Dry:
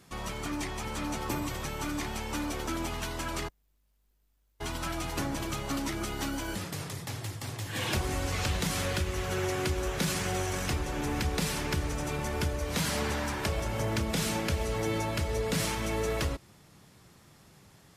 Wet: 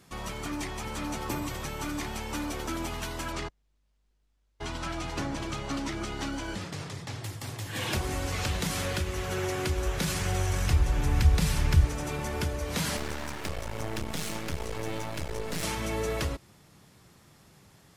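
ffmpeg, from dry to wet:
-filter_complex "[0:a]asettb=1/sr,asplit=3[a][b][c];[a]atrim=end=3.324[d];[b]atrim=start=3.32:end=7.24,asetpts=PTS-STARTPTS,afade=t=in:d=0.004:c=qsin,afade=t=out:st=3.916:d=0.004:c=qsin,lowpass=6.8k[e];[c]atrim=start=7.236[f];[d][e]acrossfade=d=0.004:c1=hsin:c2=qsin[g];[g][f]acrossfade=d=0.004:c1=qsin:c2=hsin,asettb=1/sr,asplit=3[h][i][j];[h]atrim=end=9.524[k];[i]atrim=start=9.52:end=11.85,asetpts=PTS-STARTPTS,afade=t=in:d=0.004:c=qsin,afade=t=out:st=2.326:d=0.004:c=qsin,asubboost=boost=9.5:cutoff=120[l];[j]atrim=start=11.846[m];[k][l]acrossfade=d=0.004:c1=hsin:c2=qsin[n];[n][m]acrossfade=d=0.004:c1=qsin:c2=hsin,asettb=1/sr,asplit=3[o][p][q];[o]atrim=end=12.974[r];[p]atrim=start=12.97:end=15.63,asetpts=PTS-STARTPTS,afade=t=in:d=0.004:c=qsin,afade=t=out:st=2.656:d=0.004:c=qsin,aeval=exprs='max(val(0),0)':c=same[s];[q]atrim=start=15.626[t];[r][s]acrossfade=d=0.004:c1=hsin:c2=qsin[u];[u][t]acrossfade=d=0.004:c1=qsin:c2=hsin"

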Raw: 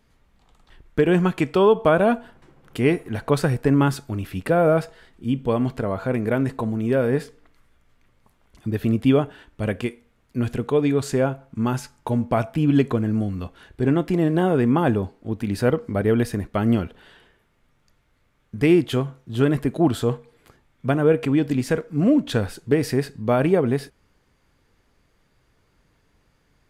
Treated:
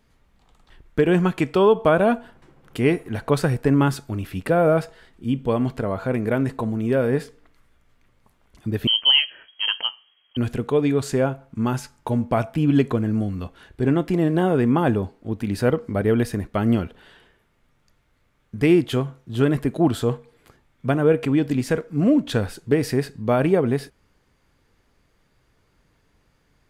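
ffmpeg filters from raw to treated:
-filter_complex "[0:a]asettb=1/sr,asplit=3[a][b][c];[a]atrim=end=8.874[d];[b]atrim=start=8.87:end=10.37,asetpts=PTS-STARTPTS,afade=t=in:d=0.004:c=qsin,afade=t=out:st=1.496:d=0.004:c=qsin,lowpass=f=2.8k:t=q:w=0.5098,lowpass=f=2.8k:t=q:w=0.6013,lowpass=f=2.8k:t=q:w=0.9,lowpass=f=2.8k:t=q:w=2.563,afreqshift=-3300[e];[c]atrim=start=10.366[f];[d][e]acrossfade=d=0.004:c1=hsin:c2=qsin[g];[g][f]acrossfade=d=0.004:c1=qsin:c2=hsin"

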